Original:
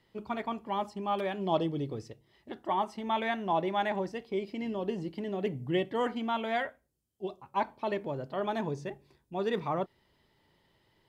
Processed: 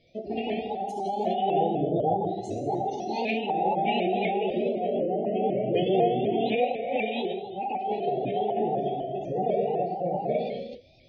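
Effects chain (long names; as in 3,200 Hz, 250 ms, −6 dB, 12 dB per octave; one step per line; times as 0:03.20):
delay that plays each chunk backwards 451 ms, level 0 dB
gate on every frequency bin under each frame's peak −25 dB strong
Chebyshev band-stop filter 740–2,000 Hz, order 5
reverb whose tail is shaped and stops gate 440 ms falling, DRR −2.5 dB
formants moved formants +3 semitones
in parallel at −0.5 dB: downward compressor, threshold −38 dBFS, peak gain reduction 17.5 dB
on the sum: pitch modulation by a square or saw wave saw up 4 Hz, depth 100 cents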